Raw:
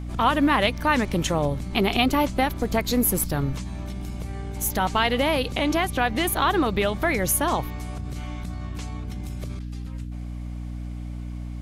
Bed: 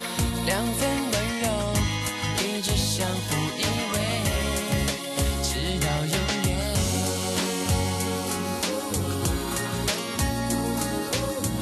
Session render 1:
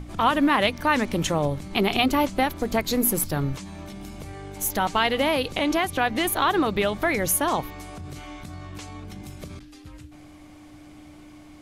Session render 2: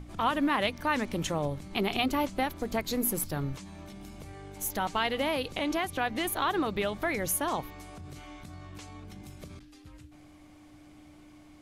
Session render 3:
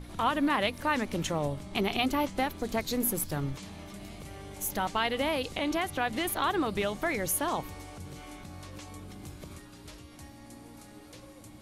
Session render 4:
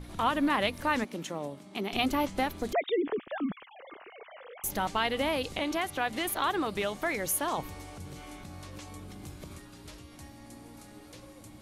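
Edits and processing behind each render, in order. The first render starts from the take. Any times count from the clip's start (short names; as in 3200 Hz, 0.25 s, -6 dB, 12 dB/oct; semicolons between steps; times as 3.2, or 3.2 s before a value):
notches 60/120/180/240 Hz
gain -7 dB
add bed -24.5 dB
1.04–1.93 ladder high-pass 160 Hz, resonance 25%; 2.73–4.64 sine-wave speech; 5.63–7.58 low shelf 230 Hz -6.5 dB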